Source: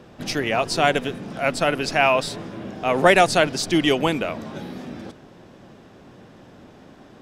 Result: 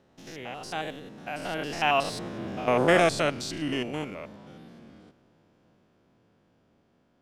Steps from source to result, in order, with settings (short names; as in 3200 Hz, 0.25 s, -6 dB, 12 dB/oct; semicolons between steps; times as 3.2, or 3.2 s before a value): stepped spectrum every 0.1 s; Doppler pass-by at 2.51, 28 m/s, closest 13 m